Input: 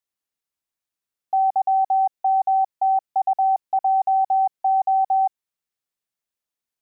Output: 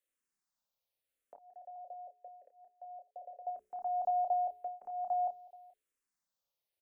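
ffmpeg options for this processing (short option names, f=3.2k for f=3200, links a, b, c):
-filter_complex "[0:a]equalizer=f=580:t=o:w=0.3:g=7.5,bandreject=f=60:t=h:w=6,bandreject=f=120:t=h:w=6,bandreject=f=180:t=h:w=6,bandreject=f=240:t=h:w=6,bandreject=f=300:t=h:w=6,bandreject=f=360:t=h:w=6,bandreject=f=420:t=h:w=6,bandreject=f=480:t=h:w=6,alimiter=level_in=1dB:limit=-24dB:level=0:latency=1:release=26,volume=-1dB,afreqshift=-49,asettb=1/sr,asplit=3[a][b][c];[a]atrim=end=1.354[d];[b]atrim=start=1.35:end=3.47,asetpts=PTS-STARTPTS,afade=t=in:d=0.004:c=qsin,afade=t=out:st=2.116:d=0.004:c=qsin,asplit=3[e][f][g];[e]bandpass=f=530:t=q:w=8,volume=0dB[h];[f]bandpass=f=1.84k:t=q:w=8,volume=-6dB[i];[g]bandpass=f=2.48k:t=q:w=8,volume=-9dB[j];[h][i][j]amix=inputs=3:normalize=0[k];[c]atrim=start=3.466[l];[d][k]acrossfade=d=0.004:c1=hsin:c2=qsin[m];[m][l]acrossfade=d=0.004:c1=qsin:c2=hsin,asplit=2[n][o];[o]adelay=30,volume=-8.5dB[p];[n][p]amix=inputs=2:normalize=0,aecho=1:1:429:0.075,asplit=2[q][r];[r]afreqshift=-0.87[s];[q][s]amix=inputs=2:normalize=1"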